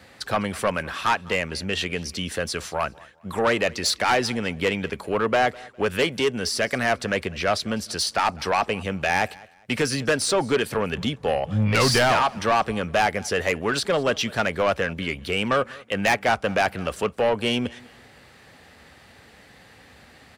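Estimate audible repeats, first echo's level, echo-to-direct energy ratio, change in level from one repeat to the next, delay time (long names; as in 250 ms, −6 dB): 2, −23.0 dB, −22.5 dB, −11.0 dB, 203 ms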